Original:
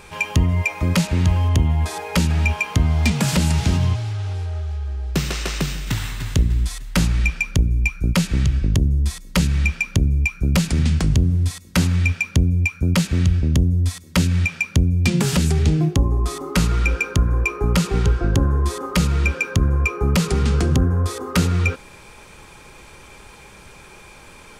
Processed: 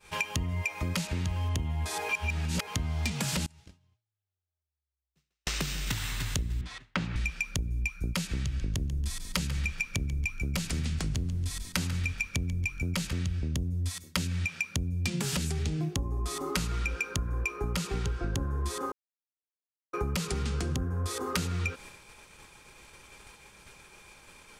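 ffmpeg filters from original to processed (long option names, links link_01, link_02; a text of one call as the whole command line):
ffmpeg -i in.wav -filter_complex "[0:a]asettb=1/sr,asplit=3[link_01][link_02][link_03];[link_01]atrim=end=3.464[link_04];[link_02]atrim=start=3.46:end=5.47,asetpts=PTS-STARTPTS,afade=type=in:duration=0.004:curve=qsin,afade=type=out:start_time=2.006:duration=0.004:curve=qsin,agate=range=-30dB:threshold=-12dB:ratio=16:release=100:detection=peak[link_05];[link_03]atrim=start=5.466[link_06];[link_04][link_05]acrossfade=duration=0.004:curve1=hsin:curve2=qsin[link_07];[link_07][link_06]acrossfade=duration=0.004:curve1=qsin:curve2=hsin,asettb=1/sr,asplit=3[link_08][link_09][link_10];[link_08]atrim=end=6.614[link_11];[link_09]atrim=start=6.61:end=7.16,asetpts=PTS-STARTPTS,afade=type=in:duration=0.004:curve=qsin,afade=type=out:start_time=0.546:duration=0.004:curve=qsin,highpass=110,lowpass=2600[link_12];[link_10]atrim=start=7.156[link_13];[link_11][link_12]acrossfade=duration=0.004:curve1=hsin:curve2=qsin[link_14];[link_14][link_13]acrossfade=duration=0.004:curve1=qsin:curve2=hsin,asettb=1/sr,asplit=3[link_15][link_16][link_17];[link_15]atrim=end=8.434[link_18];[link_16]atrim=start=8.43:end=13.13,asetpts=PTS-STARTPTS,afade=type=in:duration=0.004:curve=qsin,afade=type=out:start_time=4.696:duration=0.004:curve=qsin,asplit=4[link_19][link_20][link_21][link_22];[link_20]adelay=141,afreqshift=-45,volume=-13dB[link_23];[link_21]adelay=282,afreqshift=-90,volume=-22.1dB[link_24];[link_22]adelay=423,afreqshift=-135,volume=-31.2dB[link_25];[link_19][link_23][link_24][link_25]amix=inputs=4:normalize=0,atrim=end_sample=207270[link_26];[link_17]atrim=start=13.126[link_27];[link_18][link_26]acrossfade=duration=0.004:curve1=hsin:curve2=qsin[link_28];[link_28][link_27]acrossfade=duration=0.004:curve1=qsin:curve2=hsin,asplit=5[link_29][link_30][link_31][link_32][link_33];[link_29]atrim=end=2.092[link_34];[link_30]atrim=start=2.088:end=2.672,asetpts=PTS-STARTPTS,areverse[link_35];[link_31]atrim=start=2.668:end=18.92,asetpts=PTS-STARTPTS,afade=type=out:start_time=16.248:duration=0.004:curve=hsin[link_36];[link_32]atrim=start=18.92:end=19.93,asetpts=PTS-STARTPTS,volume=0[link_37];[link_33]atrim=start=19.93,asetpts=PTS-STARTPTS,afade=type=in:duration=0.004:curve=hsin[link_38];[link_34][link_35]acrossfade=duration=0.004:curve1=hsin:curve2=hsin[link_39];[link_36][link_37][link_38]concat=n=3:v=0:a=1[link_40];[link_39][link_40]acrossfade=duration=0.004:curve1=hsin:curve2=hsin,agate=range=-33dB:threshold=-35dB:ratio=3:detection=peak,tiltshelf=frequency=1500:gain=-3,acompressor=threshold=-29dB:ratio=5" out.wav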